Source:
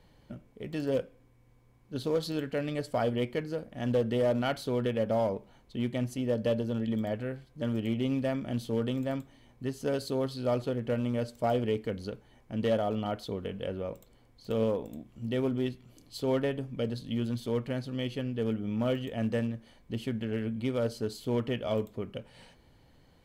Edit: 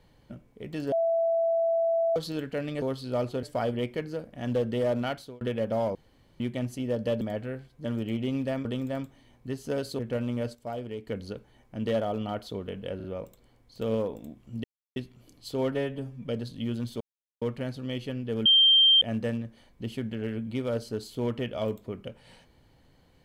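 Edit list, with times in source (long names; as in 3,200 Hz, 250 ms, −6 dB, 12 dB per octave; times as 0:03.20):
0:00.92–0:02.16: beep over 664 Hz −22 dBFS
0:04.43–0:04.80: fade out
0:05.34–0:05.79: fill with room tone
0:06.60–0:06.98: remove
0:08.42–0:08.81: remove
0:10.15–0:10.76: move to 0:02.82
0:11.32–0:11.84: clip gain −7.5 dB
0:13.73: stutter 0.04 s, 3 plays
0:15.33–0:15.65: silence
0:16.41–0:16.78: time-stretch 1.5×
0:17.51: splice in silence 0.41 s
0:18.55–0:19.11: beep over 3,160 Hz −15.5 dBFS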